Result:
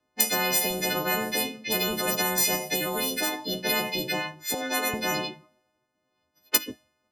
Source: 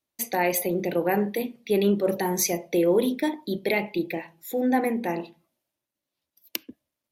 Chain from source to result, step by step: partials quantised in pitch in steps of 3 st; 4.54–4.94 s: frequency weighting A; level-controlled noise filter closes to 1.2 kHz, open at -20 dBFS; treble shelf 4.1 kHz +11 dB; 2.55–3.59 s: compression, threshold -22 dBFS, peak gain reduction 6.5 dB; spectrum-flattening compressor 4:1; trim -8.5 dB

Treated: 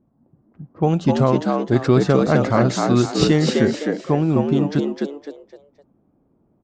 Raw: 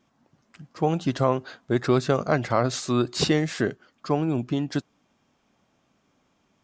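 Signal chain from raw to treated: level-controlled noise filter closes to 600 Hz, open at -22 dBFS; bass shelf 300 Hz +8 dB; on a send: frequency-shifting echo 257 ms, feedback 32%, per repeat +71 Hz, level -3.5 dB; on the sum: trim +1.5 dB

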